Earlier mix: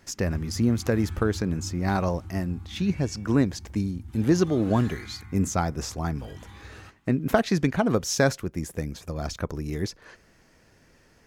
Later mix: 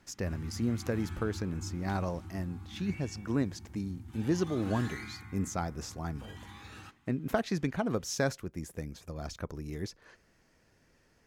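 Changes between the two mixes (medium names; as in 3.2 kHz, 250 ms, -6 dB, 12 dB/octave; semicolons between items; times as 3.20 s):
speech -8.5 dB; background: add high-pass 110 Hz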